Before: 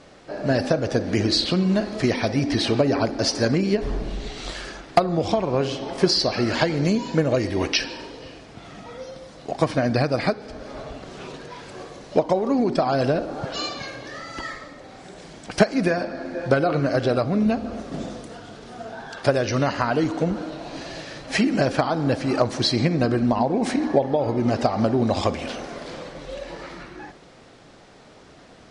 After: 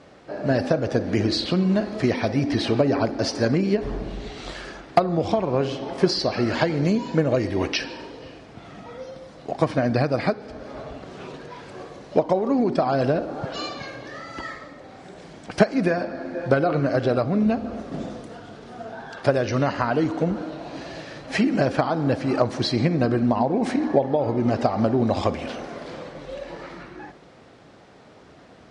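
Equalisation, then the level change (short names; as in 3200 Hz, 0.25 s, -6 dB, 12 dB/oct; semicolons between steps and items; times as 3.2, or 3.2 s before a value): HPF 52 Hz; high shelf 3600 Hz -8 dB; 0.0 dB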